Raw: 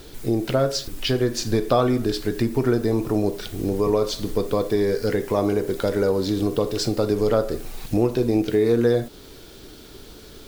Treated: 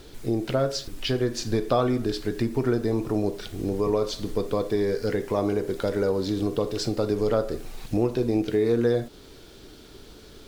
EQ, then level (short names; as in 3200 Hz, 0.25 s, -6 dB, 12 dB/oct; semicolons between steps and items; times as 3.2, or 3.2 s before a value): high shelf 12000 Hz -10 dB; -3.5 dB